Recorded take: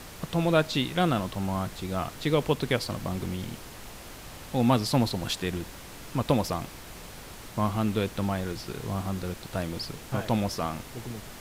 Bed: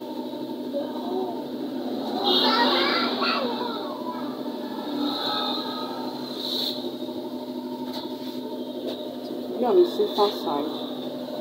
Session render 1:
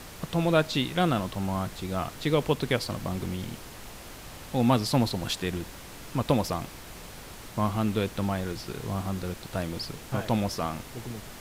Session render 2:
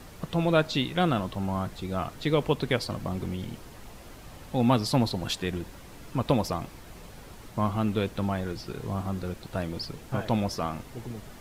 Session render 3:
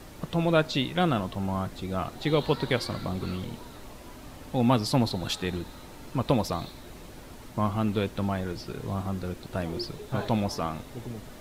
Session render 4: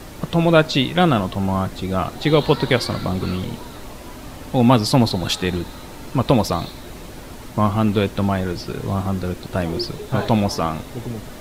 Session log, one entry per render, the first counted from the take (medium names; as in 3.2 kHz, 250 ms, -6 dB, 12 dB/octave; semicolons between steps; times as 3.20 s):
no audible change
noise reduction 7 dB, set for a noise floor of -44 dBFS
add bed -20.5 dB
trim +9 dB; peak limiter -2 dBFS, peak gain reduction 1 dB